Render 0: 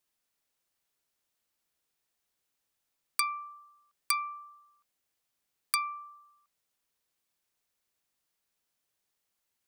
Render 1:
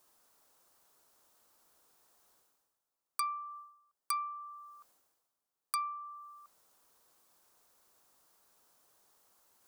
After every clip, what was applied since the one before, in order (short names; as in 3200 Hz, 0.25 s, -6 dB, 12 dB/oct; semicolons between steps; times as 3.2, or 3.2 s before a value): tone controls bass -7 dB, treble +5 dB; reverse; upward compressor, threshold -40 dBFS; reverse; resonant high shelf 1600 Hz -8.5 dB, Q 1.5; gain -3.5 dB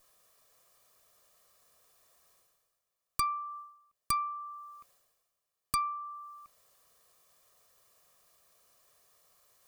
minimum comb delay 1.7 ms; gain +4 dB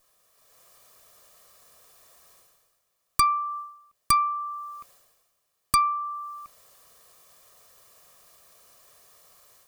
AGC gain up to 10.5 dB; hard clip -11 dBFS, distortion -22 dB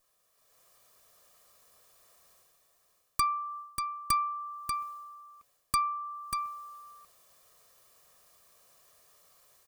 echo 0.589 s -6.5 dB; gain -7 dB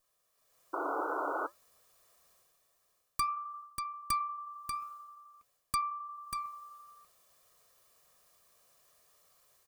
painted sound noise, 0.73–1.47, 280–1500 Hz -30 dBFS; flange 0.53 Hz, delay 0.6 ms, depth 9.2 ms, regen -82%